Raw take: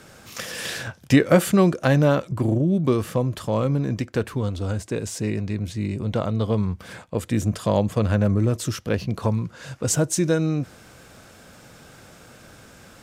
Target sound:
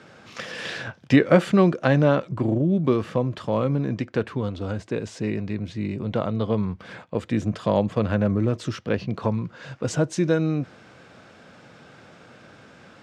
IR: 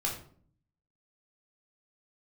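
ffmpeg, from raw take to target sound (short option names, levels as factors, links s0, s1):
-af "highpass=120,lowpass=3800"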